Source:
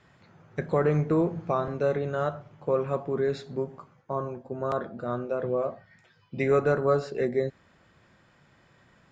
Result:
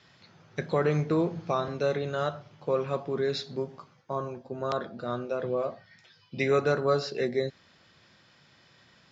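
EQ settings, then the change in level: HPF 74 Hz; synth low-pass 5600 Hz, resonance Q 2.5; bell 3800 Hz +8 dB 1.4 oct; -2.0 dB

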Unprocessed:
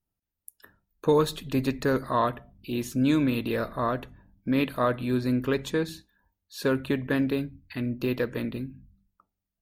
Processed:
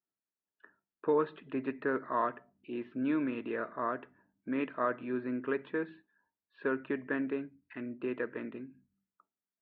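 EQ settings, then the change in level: air absorption 310 m; speaker cabinet 410–2400 Hz, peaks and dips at 530 Hz -8 dB, 780 Hz -8 dB, 1100 Hz -3 dB, 2200 Hz -4 dB; 0.0 dB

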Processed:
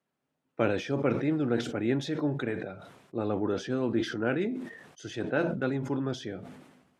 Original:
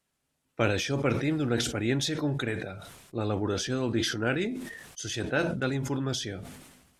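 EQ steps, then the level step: HPF 160 Hz 12 dB/oct; LPF 1100 Hz 6 dB/oct; +1.5 dB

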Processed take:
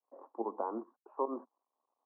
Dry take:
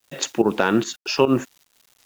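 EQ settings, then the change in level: Chebyshev band-pass 220–1100 Hz, order 5; differentiator; +7.0 dB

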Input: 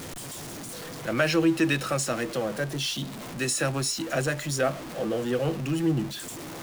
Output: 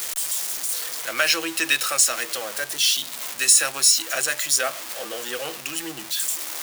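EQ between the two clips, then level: tilt +3.5 dB/oct; bell 150 Hz -15 dB 2.6 oct; +3.5 dB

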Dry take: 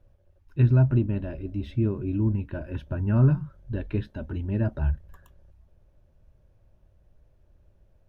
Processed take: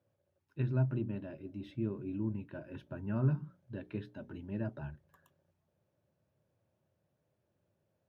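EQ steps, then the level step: HPF 120 Hz 24 dB/oct; notches 60/120/180/240/300/360/420 Hz; -9.0 dB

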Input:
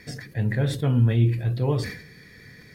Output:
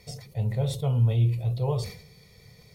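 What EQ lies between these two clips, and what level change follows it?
fixed phaser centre 690 Hz, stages 4; notch 4800 Hz, Q 22; 0.0 dB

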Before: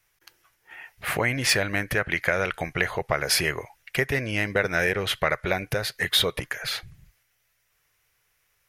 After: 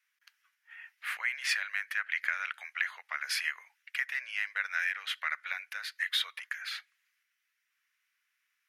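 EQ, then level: HPF 1500 Hz 24 dB/oct; high shelf 2200 Hz -10 dB; high shelf 6700 Hz -7 dB; 0.0 dB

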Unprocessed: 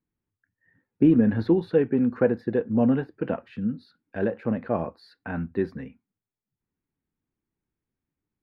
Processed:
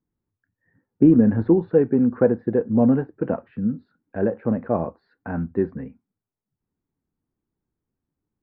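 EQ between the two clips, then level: LPF 1300 Hz 12 dB/oct; air absorption 72 m; +4.0 dB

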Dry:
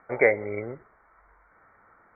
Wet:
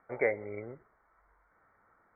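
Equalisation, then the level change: air absorption 230 m; -8.0 dB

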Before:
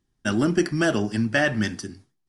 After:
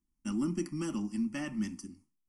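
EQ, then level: fixed phaser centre 430 Hz, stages 6; fixed phaser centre 1600 Hz, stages 4; -5.5 dB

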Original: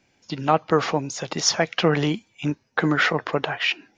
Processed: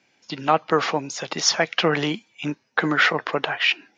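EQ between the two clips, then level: HPF 160 Hz 12 dB/oct; air absorption 69 m; tilt shelf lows -3.5 dB; +1.5 dB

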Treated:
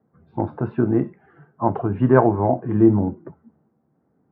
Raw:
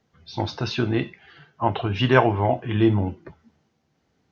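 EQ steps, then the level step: HPF 150 Hz 6 dB/oct; LPF 1400 Hz 24 dB/oct; bell 200 Hz +8.5 dB 2.6 oct; -1.0 dB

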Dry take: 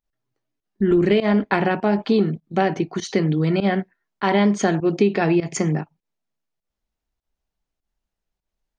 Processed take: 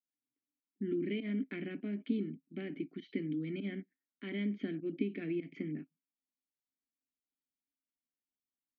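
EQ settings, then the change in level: vowel filter i; LPF 4900 Hz; air absorption 250 m; -4.0 dB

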